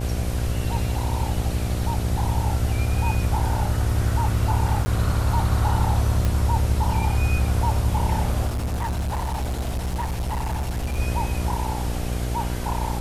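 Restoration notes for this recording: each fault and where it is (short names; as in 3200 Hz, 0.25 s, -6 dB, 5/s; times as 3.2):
buzz 60 Hz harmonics 13 -27 dBFS
4.85–4.86 gap 10 ms
6.25 pop
8.47–10.99 clipped -22.5 dBFS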